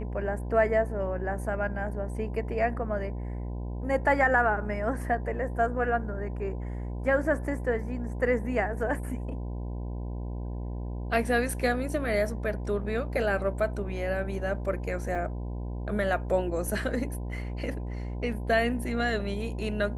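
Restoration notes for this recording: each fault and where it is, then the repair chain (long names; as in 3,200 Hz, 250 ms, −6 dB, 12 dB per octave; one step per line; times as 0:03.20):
mains buzz 60 Hz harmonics 17 −34 dBFS
0:15.15: drop-out 3.6 ms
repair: hum removal 60 Hz, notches 17
repair the gap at 0:15.15, 3.6 ms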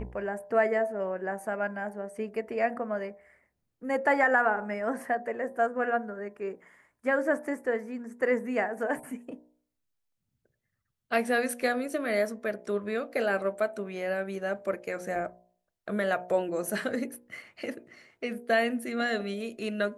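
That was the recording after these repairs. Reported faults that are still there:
none of them is left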